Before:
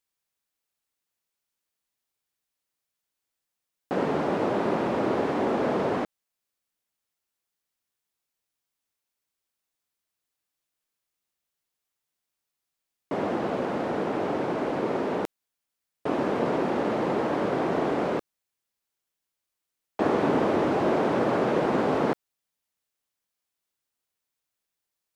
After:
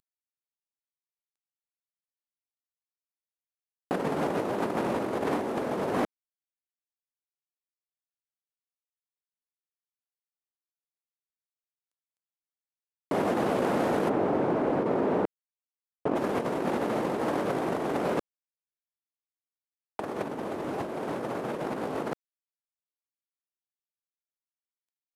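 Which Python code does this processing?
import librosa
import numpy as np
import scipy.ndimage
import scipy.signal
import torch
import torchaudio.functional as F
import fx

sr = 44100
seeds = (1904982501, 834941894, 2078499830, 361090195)

y = fx.cvsd(x, sr, bps=64000)
y = fx.lowpass(y, sr, hz=1200.0, slope=6, at=(14.08, 16.15), fade=0.02)
y = fx.over_compress(y, sr, threshold_db=-28.0, ratio=-0.5)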